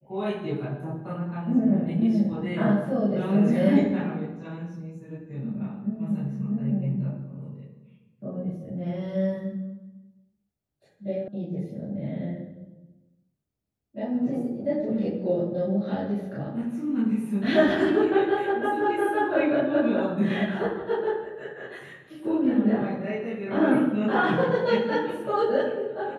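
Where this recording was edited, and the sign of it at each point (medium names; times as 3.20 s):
11.28 s: sound stops dead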